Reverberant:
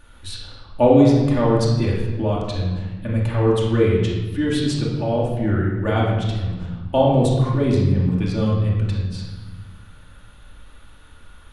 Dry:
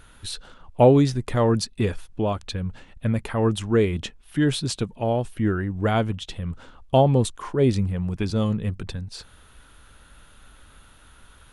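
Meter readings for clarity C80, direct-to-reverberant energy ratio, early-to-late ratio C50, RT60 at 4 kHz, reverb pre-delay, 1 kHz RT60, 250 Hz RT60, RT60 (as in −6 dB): 3.5 dB, −4.5 dB, 1.5 dB, 0.95 s, 3 ms, 1.2 s, 1.9 s, 1.3 s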